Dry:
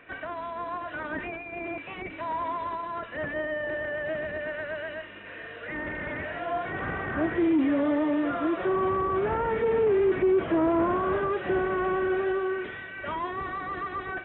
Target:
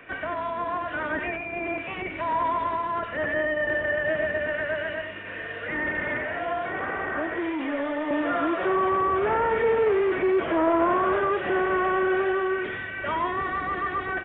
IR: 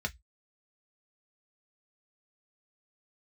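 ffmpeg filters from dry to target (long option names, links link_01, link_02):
-filter_complex "[0:a]aresample=8000,aresample=44100,acrossover=split=270|460[link_01][link_02][link_03];[link_01]acompressor=threshold=-45dB:ratio=6[link_04];[link_02]asoftclip=type=tanh:threshold=-33dB[link_05];[link_04][link_05][link_03]amix=inputs=3:normalize=0,asettb=1/sr,asplit=3[link_06][link_07][link_08];[link_06]atrim=end=6.174[link_09];[link_07]atrim=start=6.17:end=8.11,asetpts=PTS-STARTPTS,afade=type=in:duration=0.004:curve=qsin,afade=type=out:start_time=1.936:duration=0.004:curve=qsin,acrossover=split=100|240|1500[link_10][link_11][link_12][link_13];[link_10]acompressor=threshold=-58dB:ratio=4[link_14];[link_11]acompressor=threshold=-56dB:ratio=4[link_15];[link_12]acompressor=threshold=-32dB:ratio=4[link_16];[link_13]acompressor=threshold=-43dB:ratio=4[link_17];[link_14][link_15][link_16][link_17]amix=inputs=4:normalize=0[link_18];[link_08]atrim=start=8.106[link_19];[link_09][link_18]acrossfade=duration=0.004:curve1=hsin:curve2=qsin[link_20];[link_20][link_19]acrossfade=duration=0.004:curve1=qsin:curve2=hsin,asplit=2[link_21][link_22];[link_22]equalizer=frequency=1900:width_type=o:width=0.77:gain=6.5[link_23];[1:a]atrim=start_sample=2205,adelay=93[link_24];[link_23][link_24]afir=irnorm=-1:irlink=0,volume=-15dB[link_25];[link_21][link_25]amix=inputs=2:normalize=0,volume=5dB"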